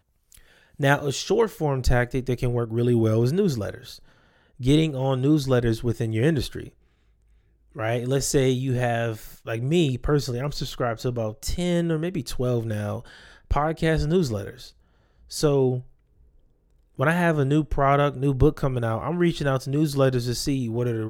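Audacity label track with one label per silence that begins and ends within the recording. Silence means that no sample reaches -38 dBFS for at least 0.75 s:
6.690000	7.760000	silence
15.820000	16.990000	silence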